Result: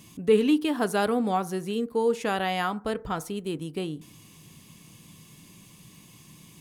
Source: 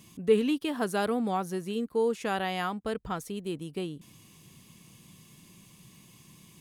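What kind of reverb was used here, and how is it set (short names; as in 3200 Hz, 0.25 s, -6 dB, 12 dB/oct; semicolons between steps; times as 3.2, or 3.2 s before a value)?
FDN reverb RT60 0.41 s, low-frequency decay 0.85×, high-frequency decay 0.35×, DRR 13.5 dB; gain +3.5 dB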